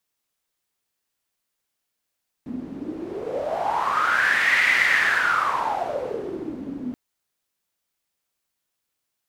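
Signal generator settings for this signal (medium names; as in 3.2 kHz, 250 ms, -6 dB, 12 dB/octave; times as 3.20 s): wind-like swept noise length 4.48 s, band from 250 Hz, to 2 kHz, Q 8.1, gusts 1, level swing 14 dB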